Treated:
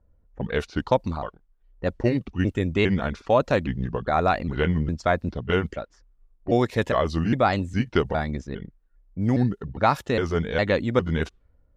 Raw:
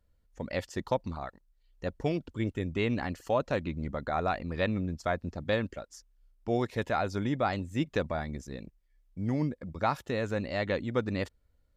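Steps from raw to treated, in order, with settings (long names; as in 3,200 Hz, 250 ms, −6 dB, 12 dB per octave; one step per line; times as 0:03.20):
pitch shifter gated in a rhythm −3.5 semitones, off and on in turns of 407 ms
low-pass that shuts in the quiet parts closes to 970 Hz, open at −28.5 dBFS
level +8.5 dB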